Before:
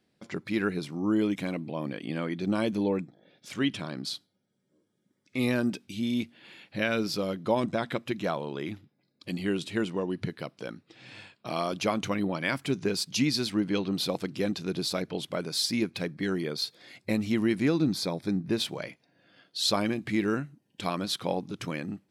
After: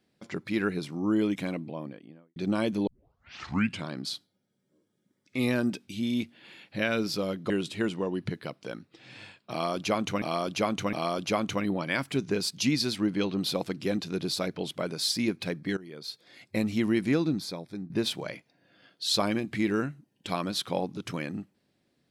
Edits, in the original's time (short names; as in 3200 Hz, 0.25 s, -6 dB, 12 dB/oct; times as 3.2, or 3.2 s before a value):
1.41–2.36 studio fade out
2.87 tape start 0.98 s
7.5–9.46 cut
11.47–12.18 loop, 3 plays
16.31–17.16 fade in, from -19.5 dB
17.69–18.44 fade out quadratic, to -9.5 dB